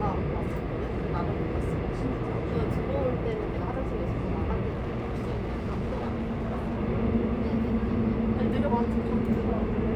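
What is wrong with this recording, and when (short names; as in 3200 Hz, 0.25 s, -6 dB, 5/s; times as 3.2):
4.69–6.77 clipped -27 dBFS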